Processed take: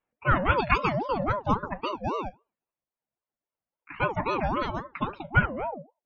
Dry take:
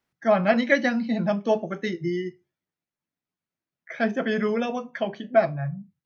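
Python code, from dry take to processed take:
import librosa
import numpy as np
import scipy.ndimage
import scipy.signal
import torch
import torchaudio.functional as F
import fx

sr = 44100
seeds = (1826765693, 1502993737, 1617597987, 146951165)

y = fx.spec_topn(x, sr, count=64)
y = fx.env_lowpass(y, sr, base_hz=2100.0, full_db=-16.5)
y = fx.ring_lfo(y, sr, carrier_hz=590.0, swing_pct=40, hz=3.7)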